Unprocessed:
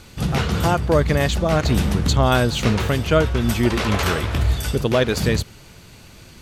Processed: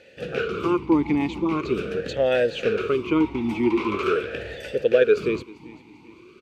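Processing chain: feedback echo 0.393 s, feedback 40%, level -18.5 dB; vowel sweep e-u 0.43 Hz; gain +8.5 dB

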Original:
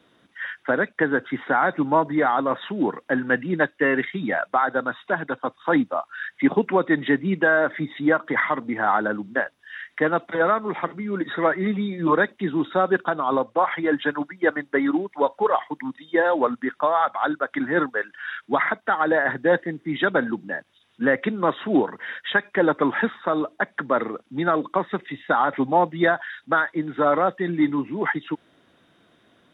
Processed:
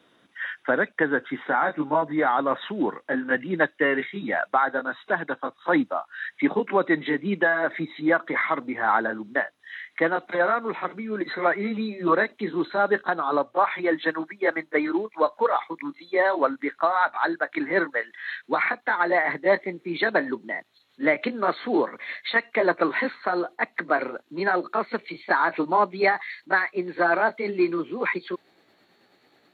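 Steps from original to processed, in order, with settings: gliding pitch shift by +3 st starting unshifted; low shelf 140 Hz -9.5 dB

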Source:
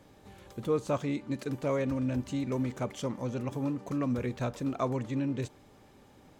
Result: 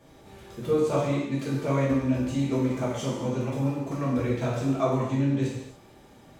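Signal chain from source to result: non-linear reverb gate 0.32 s falling, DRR -7.5 dB; gain -2.5 dB

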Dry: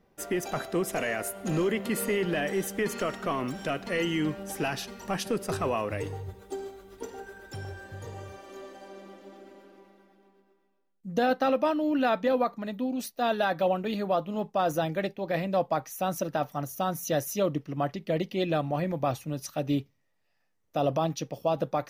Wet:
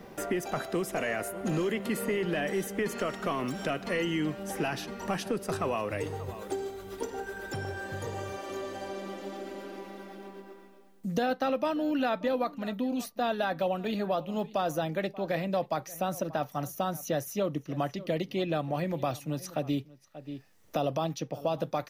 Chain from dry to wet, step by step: outdoor echo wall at 100 m, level -21 dB; three-band squash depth 70%; gain -2.5 dB

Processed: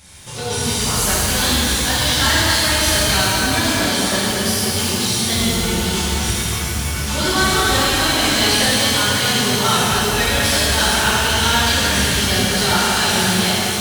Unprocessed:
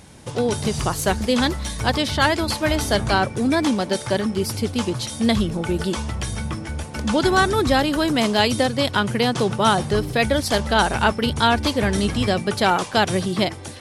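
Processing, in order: passive tone stack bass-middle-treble 5-5-5; soft clip -28 dBFS, distortion -11 dB; shimmer reverb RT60 3.3 s, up +12 st, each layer -8 dB, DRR -11 dB; gain +8 dB

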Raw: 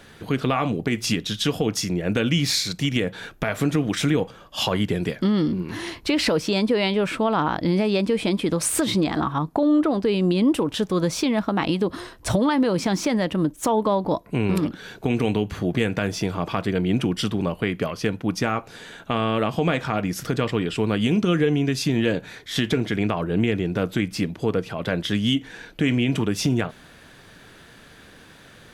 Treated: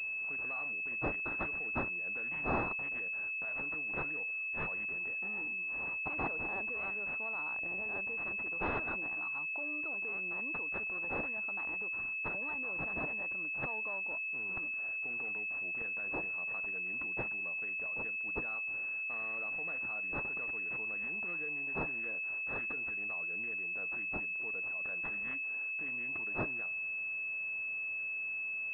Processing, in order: differentiator; pulse-width modulation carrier 2600 Hz; gain -4 dB

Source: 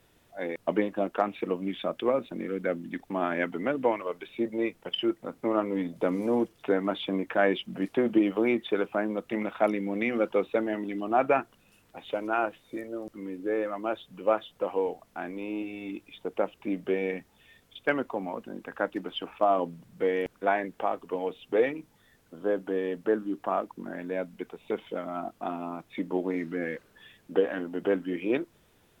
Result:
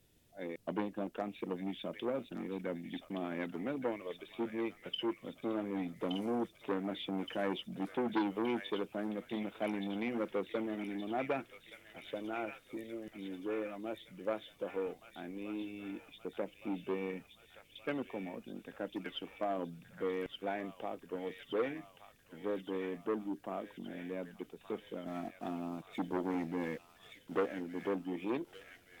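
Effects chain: 25.06–27.46 sample leveller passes 1; bell 1100 Hz -12.5 dB 2.1 oct; thin delay 1.171 s, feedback 60%, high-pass 1600 Hz, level -4.5 dB; core saturation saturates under 990 Hz; gain -3.5 dB

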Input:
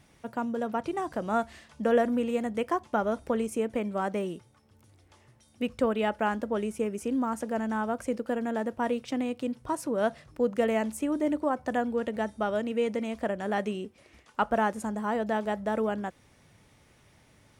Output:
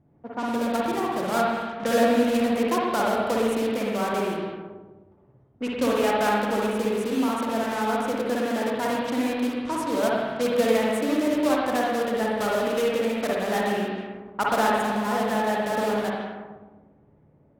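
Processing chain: block floating point 3-bit; low shelf 69 Hz -10 dB; spring tank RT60 1.6 s, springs 53/60 ms, chirp 30 ms, DRR -4 dB; low-pass opened by the level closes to 500 Hz, open at -23 dBFS

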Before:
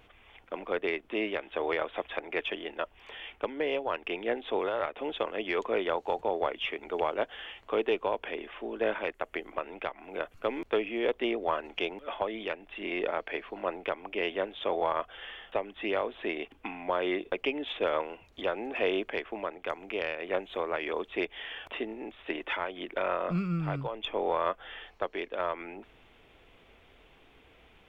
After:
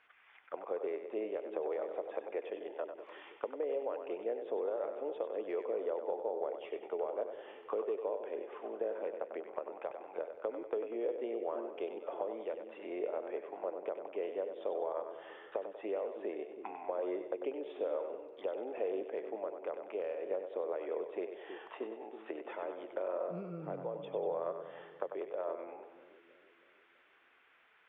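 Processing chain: auto-wah 500–1700 Hz, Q 2.3, down, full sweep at -32 dBFS; compressor 3:1, threshold -34 dBFS, peak gain reduction 7.5 dB; split-band echo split 390 Hz, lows 0.322 s, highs 96 ms, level -7.5 dB

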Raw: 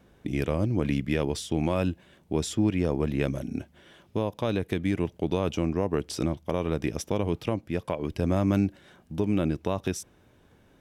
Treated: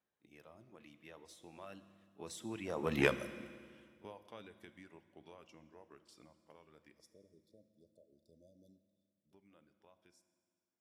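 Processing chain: Doppler pass-by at 3.02, 18 m/s, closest 1.3 m; in parallel at -4.5 dB: overloaded stage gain 23.5 dB; on the sum: HPF 63 Hz; pre-echo 31 ms -15.5 dB; reverb removal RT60 0.76 s; bell 1100 Hz +7 dB 2.4 oct; spectral delete 6.99–9.33, 660–3400 Hz; tilt +2 dB/oct; reverb RT60 1.9 s, pre-delay 5 ms, DRR 11 dB; gain -4.5 dB

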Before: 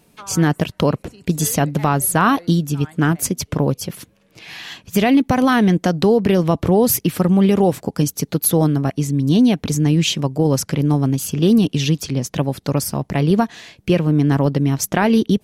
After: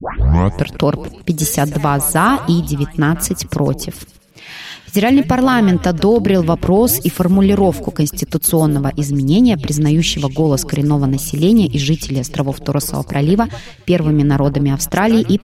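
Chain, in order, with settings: tape start at the beginning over 0.69 s; frequency-shifting echo 0.137 s, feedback 35%, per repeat -110 Hz, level -15.5 dB; gain +2.5 dB

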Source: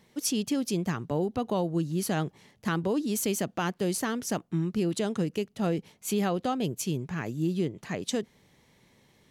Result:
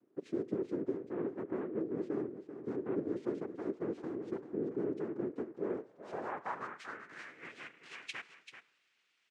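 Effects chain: spring tank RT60 1 s, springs 37 ms, DRR 16 dB; noise vocoder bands 3; on a send: echo 0.388 s -10.5 dB; on the sum: band-pass sweep 370 Hz -> 2600 Hz, 5.51–7.56; gain -3.5 dB

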